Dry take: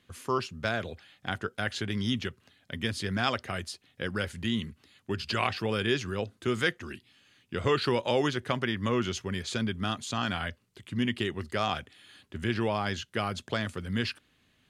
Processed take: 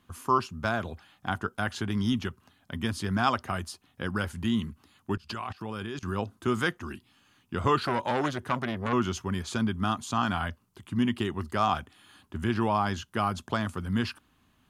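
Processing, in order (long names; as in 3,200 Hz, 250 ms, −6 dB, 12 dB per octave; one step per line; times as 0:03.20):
octave-band graphic EQ 125/500/1,000/2,000/4,000/8,000 Hz −5/−10/+6/−10/−8/−5 dB
0:05.16–0:06.03: output level in coarse steps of 21 dB
0:07.85–0:08.93: saturating transformer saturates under 1,300 Hz
level +6.5 dB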